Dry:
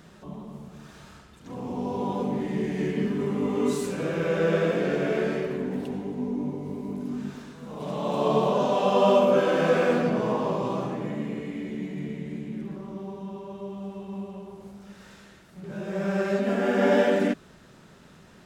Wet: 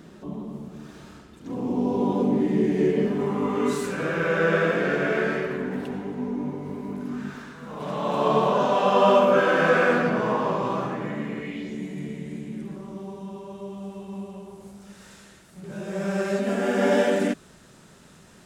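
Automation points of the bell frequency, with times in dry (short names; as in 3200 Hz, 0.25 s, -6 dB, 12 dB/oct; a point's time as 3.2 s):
bell +9.5 dB 1.2 oct
2.68 s 300 Hz
3.62 s 1500 Hz
11.39 s 1500 Hz
11.81 s 9000 Hz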